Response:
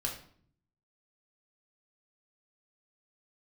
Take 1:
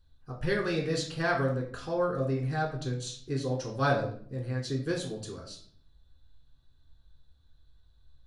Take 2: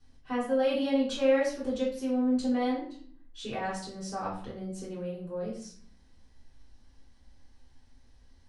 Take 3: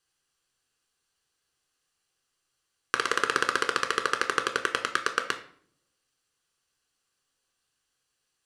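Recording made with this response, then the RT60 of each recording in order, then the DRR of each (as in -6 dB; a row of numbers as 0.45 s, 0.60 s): 1; 0.55 s, 0.55 s, 0.55 s; -0.5 dB, -7.0 dB, 5.5 dB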